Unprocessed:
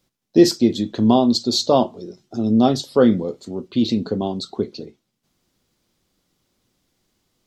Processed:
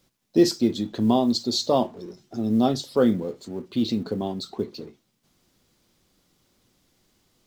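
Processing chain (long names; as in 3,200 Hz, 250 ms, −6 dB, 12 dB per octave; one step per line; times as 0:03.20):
mu-law and A-law mismatch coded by mu
level −5.5 dB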